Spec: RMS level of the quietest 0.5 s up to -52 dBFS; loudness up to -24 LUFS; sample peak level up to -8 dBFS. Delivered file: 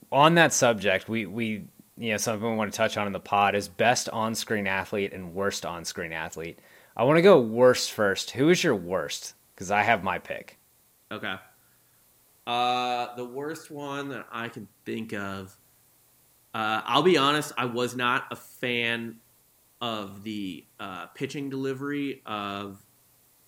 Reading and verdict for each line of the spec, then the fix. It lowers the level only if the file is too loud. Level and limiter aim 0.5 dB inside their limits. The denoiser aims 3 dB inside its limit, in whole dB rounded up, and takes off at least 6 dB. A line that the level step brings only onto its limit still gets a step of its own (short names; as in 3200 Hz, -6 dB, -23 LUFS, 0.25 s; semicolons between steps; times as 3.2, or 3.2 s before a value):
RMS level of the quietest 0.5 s -63 dBFS: OK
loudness -26.0 LUFS: OK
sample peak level -5.5 dBFS: fail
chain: limiter -8.5 dBFS